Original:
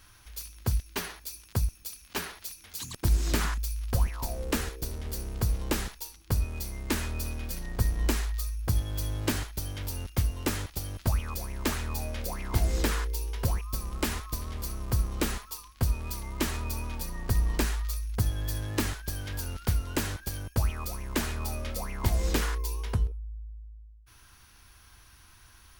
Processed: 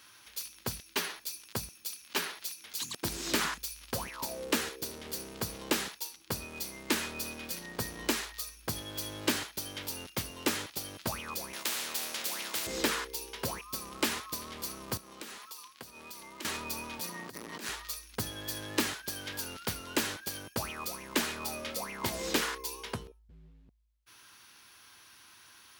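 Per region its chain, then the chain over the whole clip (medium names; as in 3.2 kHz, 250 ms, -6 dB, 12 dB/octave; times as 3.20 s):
11.53–12.67 s: feedback comb 110 Hz, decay 0.24 s, mix 80% + spectrum-flattening compressor 4:1
14.97–16.45 s: bass shelf 130 Hz -11 dB + compression 4:1, threshold -43 dBFS
16.99–17.69 s: high-pass 95 Hz 24 dB/octave + compressor with a negative ratio -37 dBFS + transformer saturation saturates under 620 Hz
23.29–23.69 s: companding laws mixed up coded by mu + tone controls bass +11 dB, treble -14 dB + three-phase chorus
whole clip: high-pass 230 Hz 12 dB/octave; peaking EQ 3.5 kHz +4 dB 1.5 oct; band-stop 720 Hz, Q 19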